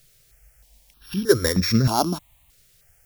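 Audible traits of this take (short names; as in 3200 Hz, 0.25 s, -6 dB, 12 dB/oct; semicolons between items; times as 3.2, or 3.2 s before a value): a buzz of ramps at a fixed pitch in blocks of 8 samples; tremolo triangle 7 Hz, depth 50%; a quantiser's noise floor 10-bit, dither triangular; notches that jump at a steady rate 3.2 Hz 250–3000 Hz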